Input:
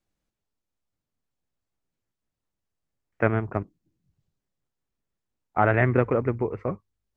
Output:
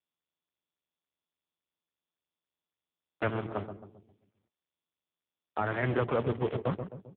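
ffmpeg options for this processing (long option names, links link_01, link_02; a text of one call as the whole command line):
ffmpeg -i in.wav -filter_complex "[0:a]afwtdn=0.0224,adynamicequalizer=threshold=0.00794:dfrequency=290:dqfactor=3.4:tfrequency=290:tqfactor=3.4:attack=5:release=100:ratio=0.375:range=3:mode=cutabove:tftype=bell,acrossover=split=160|650|2700[link_01][link_02][link_03][link_04];[link_01]acompressor=threshold=-37dB:ratio=4[link_05];[link_02]acompressor=threshold=-35dB:ratio=4[link_06];[link_03]acompressor=threshold=-30dB:ratio=4[link_07];[link_04]acompressor=threshold=-53dB:ratio=4[link_08];[link_05][link_06][link_07][link_08]amix=inputs=4:normalize=0,acrusher=bits=7:dc=4:mix=0:aa=0.000001,asplit=3[link_09][link_10][link_11];[link_09]afade=type=out:start_time=3.28:duration=0.02[link_12];[link_10]flanger=delay=6.5:depth=5.5:regen=74:speed=1.3:shape=sinusoidal,afade=type=in:start_time=3.28:duration=0.02,afade=type=out:start_time=5.82:duration=0.02[link_13];[link_11]afade=type=in:start_time=5.82:duration=0.02[link_14];[link_12][link_13][link_14]amix=inputs=3:normalize=0,asoftclip=type=tanh:threshold=-22dB,asplit=2[link_15][link_16];[link_16]adelay=132,lowpass=frequency=820:poles=1,volume=-8dB,asplit=2[link_17][link_18];[link_18]adelay=132,lowpass=frequency=820:poles=1,volume=0.51,asplit=2[link_19][link_20];[link_20]adelay=132,lowpass=frequency=820:poles=1,volume=0.51,asplit=2[link_21][link_22];[link_22]adelay=132,lowpass=frequency=820:poles=1,volume=0.51,asplit=2[link_23][link_24];[link_24]adelay=132,lowpass=frequency=820:poles=1,volume=0.51,asplit=2[link_25][link_26];[link_26]adelay=132,lowpass=frequency=820:poles=1,volume=0.51[link_27];[link_15][link_17][link_19][link_21][link_23][link_25][link_27]amix=inputs=7:normalize=0,volume=5dB" -ar 8000 -c:a libopencore_amrnb -b:a 5150 out.amr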